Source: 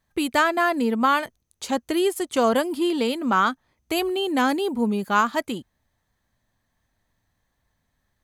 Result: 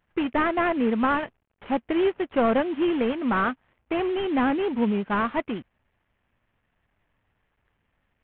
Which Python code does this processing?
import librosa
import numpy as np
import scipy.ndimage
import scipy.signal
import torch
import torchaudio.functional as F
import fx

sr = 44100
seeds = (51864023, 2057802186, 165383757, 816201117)

y = fx.cvsd(x, sr, bps=16000)
y = fx.vibrato(y, sr, rate_hz=11.0, depth_cents=39.0)